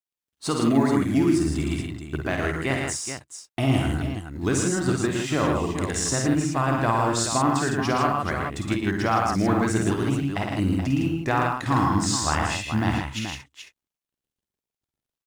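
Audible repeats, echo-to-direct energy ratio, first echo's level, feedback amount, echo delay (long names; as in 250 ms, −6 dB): 4, 0.5 dB, −5.5 dB, repeats not evenly spaced, 52 ms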